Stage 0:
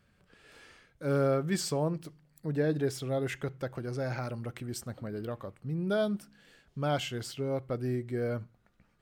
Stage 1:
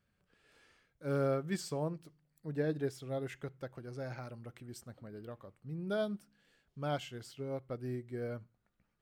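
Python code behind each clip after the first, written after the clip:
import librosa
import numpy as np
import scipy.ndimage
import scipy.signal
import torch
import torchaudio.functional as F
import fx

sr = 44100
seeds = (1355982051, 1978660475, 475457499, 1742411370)

y = fx.upward_expand(x, sr, threshold_db=-38.0, expansion=1.5)
y = y * 10.0 ** (-4.5 / 20.0)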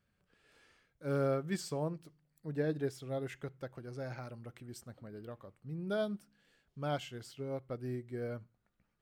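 y = x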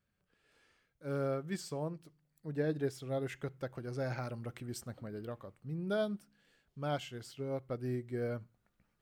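y = fx.rider(x, sr, range_db=5, speed_s=2.0)
y = y * 10.0 ** (1.0 / 20.0)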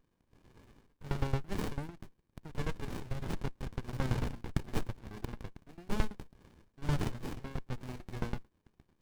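y = fx.filter_lfo_highpass(x, sr, shape='saw_up', hz=9.0, low_hz=960.0, high_hz=3600.0, q=1.1)
y = fx.running_max(y, sr, window=65)
y = y * 10.0 ** (17.5 / 20.0)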